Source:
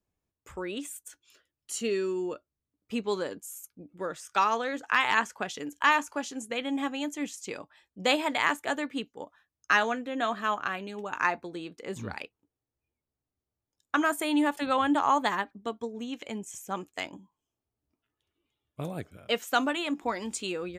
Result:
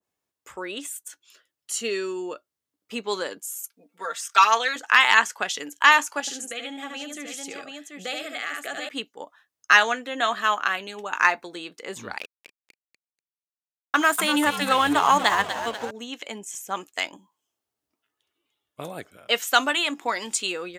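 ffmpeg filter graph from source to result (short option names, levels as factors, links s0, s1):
-filter_complex "[0:a]asettb=1/sr,asplit=3[s0][s1][s2];[s0]atrim=end=3.584[s3];[s1]atrim=start=3.58:end=4.76,asetpts=PTS-STARTPTS,afade=t=in:d=0.004:c=qsin,afade=t=out:st=1.176:d=0.004:c=qsin,highpass=f=800:p=1,aecho=1:1:4.4:0.98,atrim=end_sample=52038[s4];[s2]atrim=start=4.756[s5];[s3][s4]acrossfade=d=0.004:c1=hsin:c2=qsin[s6];[s6][s5]acrossfade=d=0.004:c1=qsin:c2=hsin,asettb=1/sr,asplit=3[s7][s8][s9];[s7]atrim=end=6.204[s10];[s8]atrim=start=6.2:end=8.89,asetpts=PTS-STARTPTS,afade=t=in:d=0.004:c=qsin,afade=t=out:st=2.686:d=0.004:c=qsin,aecho=1:1:72|735:0.531|0.376,atrim=end_sample=118629,acompressor=threshold=0.0178:ratio=3:attack=3.2:release=140:knee=1:detection=peak,asuperstop=centerf=980:order=12:qfactor=3.6[s11];[s9]atrim=start=8.886[s12];[s10][s11]acrossfade=d=0.004:c1=hsin:c2=qsin[s13];[s13][s12]acrossfade=d=0.004:c1=qsin:c2=hsin,asettb=1/sr,asplit=3[s14][s15][s16];[s14]atrim=end=12.184[s17];[s15]atrim=start=12.18:end=15.91,asetpts=PTS-STARTPTS,afade=t=in:d=0.004:c=qsin,afade=t=out:st=3.726:d=0.004:c=qsin,lowshelf=f=180:g=10,asplit=8[s18][s19][s20][s21][s22][s23][s24][s25];[s19]adelay=243,afreqshift=-99,volume=0.355[s26];[s20]adelay=486,afreqshift=-198,volume=0.214[s27];[s21]adelay=729,afreqshift=-297,volume=0.127[s28];[s22]adelay=972,afreqshift=-396,volume=0.0767[s29];[s23]adelay=1215,afreqshift=-495,volume=0.0462[s30];[s24]adelay=1458,afreqshift=-594,volume=0.0275[s31];[s25]adelay=1701,afreqshift=-693,volume=0.0166[s32];[s18][s26][s27][s28][s29][s30][s31][s32]amix=inputs=8:normalize=0,atrim=end_sample=164493,aeval=exprs='sgn(val(0))*max(abs(val(0))-0.00501,0)':c=same[s33];[s16]atrim=start=15.906[s34];[s17][s33]acrossfade=d=0.004:c1=hsin:c2=qsin[s35];[s35][s34]acrossfade=d=0.004:c1=qsin:c2=hsin,highpass=f=670:p=1,bandreject=f=2400:w=22,adynamicequalizer=threshold=0.0126:dfrequency=1500:dqfactor=0.7:tfrequency=1500:tqfactor=0.7:attack=5:release=100:ratio=0.375:range=2.5:mode=boostabove:tftype=highshelf,volume=2.11"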